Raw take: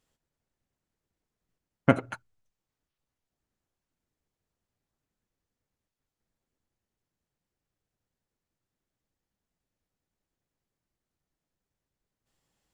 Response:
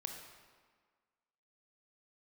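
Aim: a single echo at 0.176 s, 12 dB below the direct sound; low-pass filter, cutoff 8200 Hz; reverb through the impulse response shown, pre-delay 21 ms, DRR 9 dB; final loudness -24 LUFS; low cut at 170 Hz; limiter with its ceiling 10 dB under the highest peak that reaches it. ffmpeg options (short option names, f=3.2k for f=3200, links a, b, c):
-filter_complex "[0:a]highpass=170,lowpass=8.2k,alimiter=limit=-14dB:level=0:latency=1,aecho=1:1:176:0.251,asplit=2[a][b];[1:a]atrim=start_sample=2205,adelay=21[c];[b][c]afir=irnorm=-1:irlink=0,volume=-7.5dB[d];[a][d]amix=inputs=2:normalize=0,volume=12.5dB"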